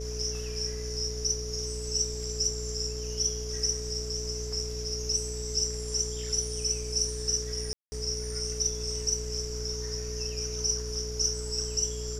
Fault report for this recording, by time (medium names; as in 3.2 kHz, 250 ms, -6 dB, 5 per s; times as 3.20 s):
buzz 60 Hz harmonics 11 -37 dBFS
whine 430 Hz -38 dBFS
7.73–7.92 s: dropout 190 ms